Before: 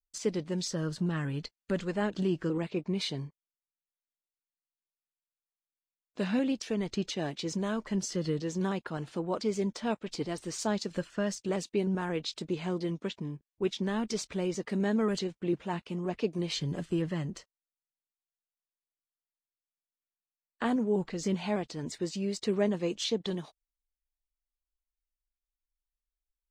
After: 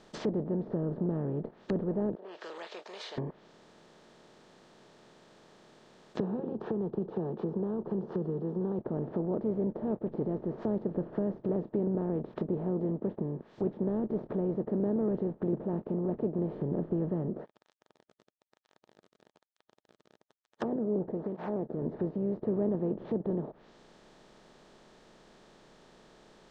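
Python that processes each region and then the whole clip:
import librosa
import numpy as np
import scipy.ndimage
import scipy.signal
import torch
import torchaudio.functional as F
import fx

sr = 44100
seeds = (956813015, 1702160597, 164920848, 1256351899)

y = fx.chain(x, sr, fx.steep_highpass(hz=510.0, slope=36),
    fx.differentiator(), at=(2.15, 3.18))
y = fx.chain(y, sr, fx.highpass(hz=240.0, slope=6),
    fx.fixed_phaser(hz=410.0, stages=8),
    fx.band_squash(depth_pct=70), at=(6.2, 8.79))
y = fx.chain(y, sr, fx.median_filter(points=15),
    fx.flanger_cancel(hz=1.1, depth_ms=1.3), at=(17.28, 21.82))
y = fx.bin_compress(y, sr, power=0.4)
y = fx.lowpass(y, sr, hz=2200.0, slope=6)
y = fx.env_lowpass_down(y, sr, base_hz=530.0, full_db=-26.0)
y = y * 10.0 ** (-4.0 / 20.0)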